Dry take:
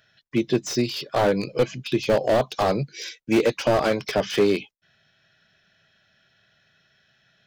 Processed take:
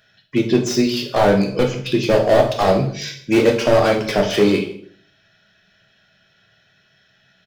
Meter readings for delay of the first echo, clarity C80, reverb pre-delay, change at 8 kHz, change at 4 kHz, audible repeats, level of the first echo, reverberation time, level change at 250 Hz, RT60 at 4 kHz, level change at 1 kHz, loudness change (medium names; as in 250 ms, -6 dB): 159 ms, 12.0 dB, 5 ms, +5.0 dB, +5.5 dB, 1, -20.5 dB, 0.60 s, +6.5 dB, 0.45 s, +5.5 dB, +6.0 dB